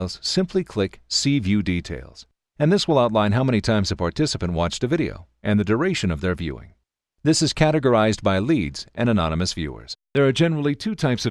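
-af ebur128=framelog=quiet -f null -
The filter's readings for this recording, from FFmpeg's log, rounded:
Integrated loudness:
  I:         -21.5 LUFS
  Threshold: -31.8 LUFS
Loudness range:
  LRA:         2.2 LU
  Threshold: -41.7 LUFS
  LRA low:   -23.2 LUFS
  LRA high:  -20.9 LUFS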